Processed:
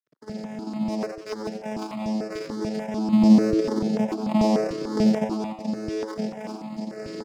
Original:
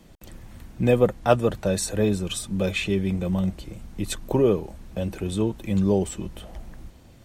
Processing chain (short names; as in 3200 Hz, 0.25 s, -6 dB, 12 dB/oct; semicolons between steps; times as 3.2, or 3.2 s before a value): recorder AGC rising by 61 dB/s; overloaded stage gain 8 dB; limiter -17.5 dBFS, peak gain reduction 9.5 dB; 3.12–5.24 low shelf 490 Hz +10 dB; sample-rate reducer 2300 Hz, jitter 0%; vocoder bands 4, saw 215 Hz; crossover distortion -43 dBFS; HPF 160 Hz 12 dB/oct; bell 5000 Hz +12.5 dB 0.41 oct; frequency-shifting echo 91 ms, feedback 52%, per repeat +110 Hz, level -9 dB; step phaser 6.8 Hz 220–1600 Hz; gain +4 dB